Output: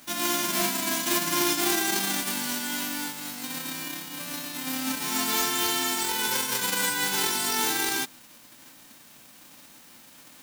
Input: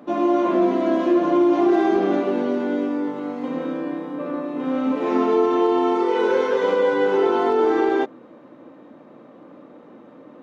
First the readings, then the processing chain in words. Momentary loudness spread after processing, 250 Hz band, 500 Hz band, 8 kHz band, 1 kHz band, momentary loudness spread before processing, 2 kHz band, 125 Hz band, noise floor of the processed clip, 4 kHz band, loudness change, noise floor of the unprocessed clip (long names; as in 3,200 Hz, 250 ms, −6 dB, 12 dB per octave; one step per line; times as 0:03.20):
10 LU, −13.0 dB, −18.0 dB, can't be measured, −7.5 dB, 10 LU, +2.5 dB, −3.0 dB, −52 dBFS, +12.5 dB, −5.0 dB, −46 dBFS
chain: spectral envelope flattened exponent 0.1
background noise white −47 dBFS
level −8 dB